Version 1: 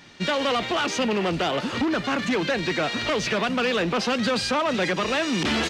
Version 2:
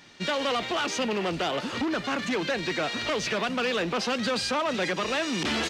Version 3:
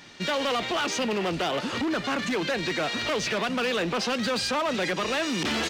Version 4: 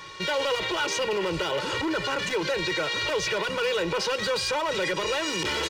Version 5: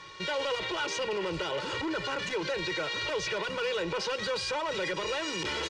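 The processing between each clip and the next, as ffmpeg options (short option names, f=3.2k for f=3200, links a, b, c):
-af "bass=f=250:g=-3,treble=f=4k:g=2,volume=-3.5dB"
-filter_complex "[0:a]asplit=2[a][b];[b]alimiter=level_in=3.5dB:limit=-24dB:level=0:latency=1:release=212,volume=-3.5dB,volume=0dB[c];[a][c]amix=inputs=2:normalize=0,asoftclip=type=hard:threshold=-20.5dB,volume=-2dB"
-af "aecho=1:1:2.1:0.95,alimiter=limit=-21.5dB:level=0:latency=1:release=36,aeval=exprs='val(0)+0.00501*sin(2*PI*1100*n/s)':c=same,volume=1.5dB"
-af "lowpass=7.5k,volume=-5dB"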